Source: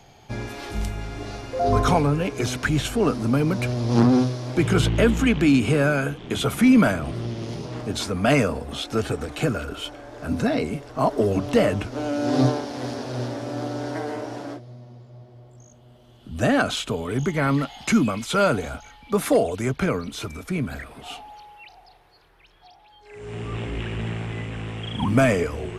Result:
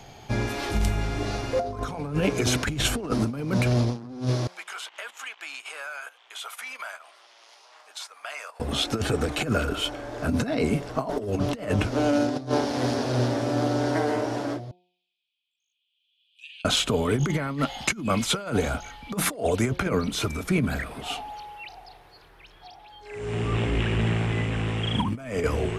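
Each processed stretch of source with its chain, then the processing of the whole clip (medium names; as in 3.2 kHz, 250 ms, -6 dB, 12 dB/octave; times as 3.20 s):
4.47–8.60 s: high-pass 820 Hz 24 dB/octave + gate -34 dBFS, range -14 dB + compression 3:1, threshold -43 dBFS
14.71–16.65 s: rippled Chebyshev high-pass 2.4 kHz, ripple 6 dB + distance through air 460 m
whole clip: de-hum 179.2 Hz, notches 5; compressor with a negative ratio -25 dBFS, ratio -0.5; trim +1.5 dB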